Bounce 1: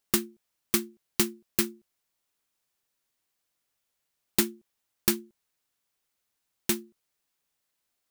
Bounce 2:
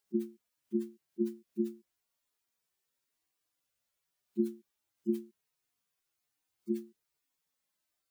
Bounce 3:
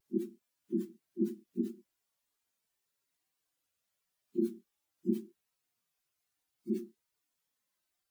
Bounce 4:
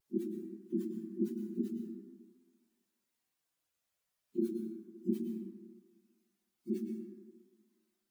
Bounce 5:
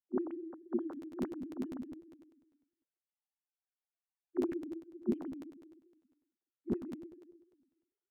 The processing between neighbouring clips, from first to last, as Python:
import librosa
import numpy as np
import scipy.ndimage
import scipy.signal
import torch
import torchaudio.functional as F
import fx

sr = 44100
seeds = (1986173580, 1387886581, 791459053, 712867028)

y1 = fx.hpss_only(x, sr, part='harmonic')
y2 = fx.phase_scramble(y1, sr, seeds[0], window_ms=50)
y2 = fx.vibrato(y2, sr, rate_hz=0.76, depth_cents=31.0)
y3 = fx.rev_plate(y2, sr, seeds[1], rt60_s=1.4, hf_ratio=0.45, predelay_ms=95, drr_db=3.5)
y3 = F.gain(torch.from_numpy(y3), -2.0).numpy()
y4 = fx.sine_speech(y3, sr)
y4 = fx.air_absorb(y4, sr, metres=380.0)
y4 = fx.buffer_crackle(y4, sr, first_s=0.91, period_s=0.1, block=512, kind='repeat')